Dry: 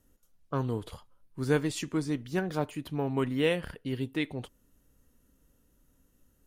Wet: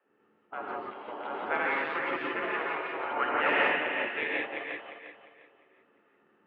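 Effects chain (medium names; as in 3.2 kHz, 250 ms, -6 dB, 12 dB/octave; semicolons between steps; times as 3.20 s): backward echo that repeats 176 ms, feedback 56%, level -2 dB; spectral gate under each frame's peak -15 dB weak; 3.00–3.50 s: peaking EQ 1.5 kHz +9.5 dB 0.33 oct; integer overflow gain 21 dB; 0.68–1.46 s: reverse; gated-style reverb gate 200 ms rising, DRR -3 dB; mistuned SSB -87 Hz 350–2600 Hz; trim +6 dB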